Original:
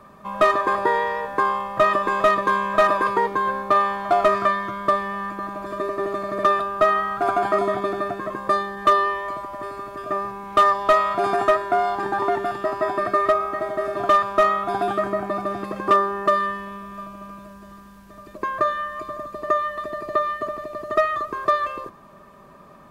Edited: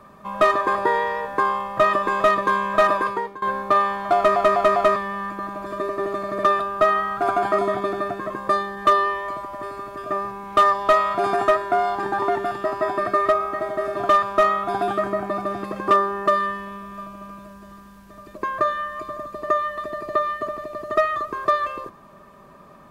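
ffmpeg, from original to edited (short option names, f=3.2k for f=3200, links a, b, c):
-filter_complex "[0:a]asplit=6[a][b][c][d][e][f];[a]atrim=end=3.42,asetpts=PTS-STARTPTS,afade=t=out:st=2.94:d=0.48:silence=0.1[g];[b]atrim=start=3.42:end=4.362,asetpts=PTS-STARTPTS,afade=t=in:d=0.004:c=hsin:silence=0.1[h];[c]atrim=start=4.158:end=4.362[i];[d]atrim=start=4.158:end=4.362[j];[e]atrim=start=4.158:end=4.362[k];[f]atrim=start=4.958[l];[g][h]concat=n=2:v=0:a=1[m];[m][i]acrossfade=d=0.004:c1=hsin:c2=hsin[n];[n][j]acrossfade=d=0.004:c1=hsin:c2=hsin[o];[o][k]acrossfade=d=0.004:c1=hsin:c2=hsin[p];[p][l]acrossfade=d=0.004:c1=hsin:c2=hsin"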